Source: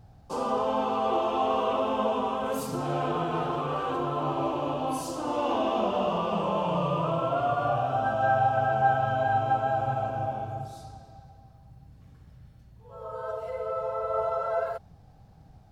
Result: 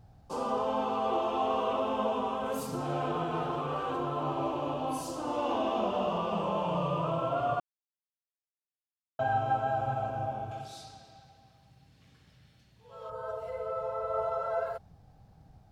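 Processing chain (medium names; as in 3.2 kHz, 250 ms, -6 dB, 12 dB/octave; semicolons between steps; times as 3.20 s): 7.60–9.19 s: mute; 10.51–13.10 s: frequency weighting D; trim -3.5 dB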